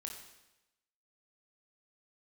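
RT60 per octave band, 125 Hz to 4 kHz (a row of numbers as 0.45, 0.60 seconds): 0.95, 0.95, 1.0, 0.95, 0.95, 0.95 seconds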